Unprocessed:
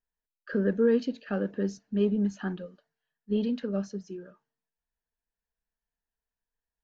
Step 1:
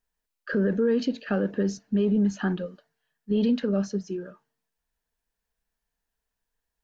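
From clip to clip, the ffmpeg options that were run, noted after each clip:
ffmpeg -i in.wav -af "alimiter=limit=-23.5dB:level=0:latency=1:release=39,volume=7.5dB" out.wav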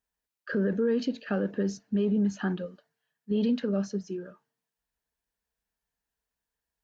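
ffmpeg -i in.wav -af "highpass=44,volume=-3dB" out.wav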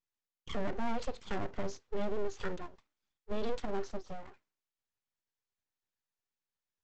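ffmpeg -i in.wav -af "aresample=16000,aeval=exprs='abs(val(0))':channel_layout=same,aresample=44100,bandreject=frequency=670:width=12,volume=-4.5dB" out.wav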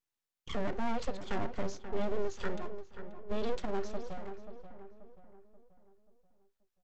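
ffmpeg -i in.wav -filter_complex "[0:a]asplit=2[link_01][link_02];[link_02]adelay=533,lowpass=frequency=1900:poles=1,volume=-10dB,asplit=2[link_03][link_04];[link_04]adelay=533,lowpass=frequency=1900:poles=1,volume=0.45,asplit=2[link_05][link_06];[link_06]adelay=533,lowpass=frequency=1900:poles=1,volume=0.45,asplit=2[link_07][link_08];[link_08]adelay=533,lowpass=frequency=1900:poles=1,volume=0.45,asplit=2[link_09][link_10];[link_10]adelay=533,lowpass=frequency=1900:poles=1,volume=0.45[link_11];[link_01][link_03][link_05][link_07][link_09][link_11]amix=inputs=6:normalize=0,volume=1dB" out.wav

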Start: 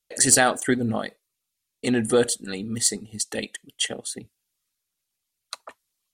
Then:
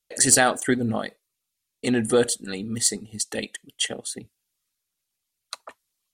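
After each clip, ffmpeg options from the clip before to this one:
ffmpeg -i in.wav -af anull out.wav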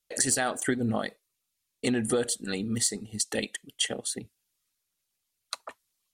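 ffmpeg -i in.wav -af "acompressor=threshold=-23dB:ratio=6" out.wav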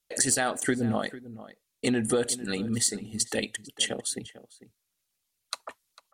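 ffmpeg -i in.wav -filter_complex "[0:a]asplit=2[link_01][link_02];[link_02]adelay=449,volume=-16dB,highshelf=frequency=4000:gain=-10.1[link_03];[link_01][link_03]amix=inputs=2:normalize=0,volume=1dB" out.wav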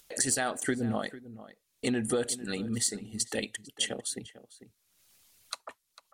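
ffmpeg -i in.wav -af "acompressor=mode=upward:threshold=-42dB:ratio=2.5,volume=-3.5dB" out.wav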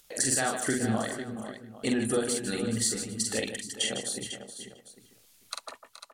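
ffmpeg -i in.wav -af "aecho=1:1:45|154|175|424|499|802:0.668|0.355|0.112|0.224|0.299|0.141" out.wav

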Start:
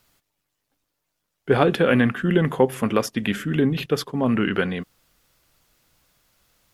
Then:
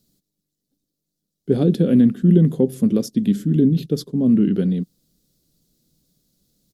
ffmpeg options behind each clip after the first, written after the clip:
ffmpeg -i in.wav -af "firequalizer=gain_entry='entry(110,0);entry(170,12);entry(910,-19);entry(2600,-16);entry(3900,0)':delay=0.05:min_phase=1,volume=-2.5dB" out.wav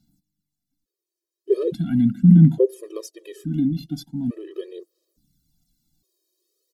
ffmpeg -i in.wav -af "aphaser=in_gain=1:out_gain=1:delay=2.9:decay=0.58:speed=0.4:type=sinusoidal,afftfilt=real='re*gt(sin(2*PI*0.58*pts/sr)*(1-2*mod(floor(b*sr/1024/330),2)),0)':imag='im*gt(sin(2*PI*0.58*pts/sr)*(1-2*mod(floor(b*sr/1024/330),2)),0)':win_size=1024:overlap=0.75,volume=-4dB" out.wav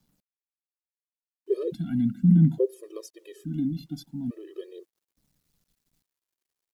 ffmpeg -i in.wav -af "acrusher=bits=10:mix=0:aa=0.000001,volume=-6.5dB" out.wav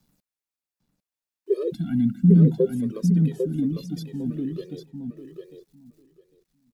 ffmpeg -i in.wav -filter_complex "[0:a]bandreject=frequency=3100:width=23,asplit=2[link_01][link_02];[link_02]adelay=800,lowpass=frequency=4800:poles=1,volume=-5dB,asplit=2[link_03][link_04];[link_04]adelay=800,lowpass=frequency=4800:poles=1,volume=0.15,asplit=2[link_05][link_06];[link_06]adelay=800,lowpass=frequency=4800:poles=1,volume=0.15[link_07];[link_03][link_05][link_07]amix=inputs=3:normalize=0[link_08];[link_01][link_08]amix=inputs=2:normalize=0,volume=3dB" out.wav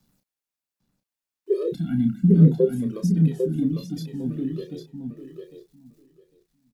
ffmpeg -i in.wav -filter_complex "[0:a]asplit=2[link_01][link_02];[link_02]adelay=31,volume=-7dB[link_03];[link_01][link_03]amix=inputs=2:normalize=0" out.wav

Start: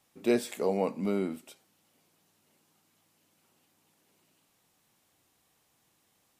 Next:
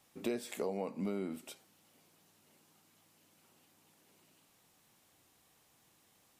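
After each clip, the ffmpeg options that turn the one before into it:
ffmpeg -i in.wav -af "acompressor=threshold=-36dB:ratio=6,volume=2dB" out.wav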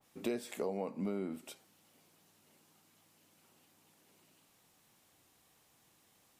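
ffmpeg -i in.wav -af "adynamicequalizer=threshold=0.00158:dfrequency=2100:dqfactor=0.7:tfrequency=2100:tqfactor=0.7:attack=5:release=100:ratio=0.375:range=2.5:mode=cutabove:tftype=highshelf" out.wav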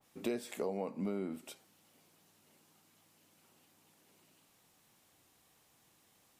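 ffmpeg -i in.wav -af anull out.wav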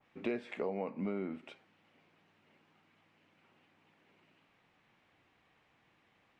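ffmpeg -i in.wav -af "lowpass=frequency=2300:width_type=q:width=1.7" out.wav

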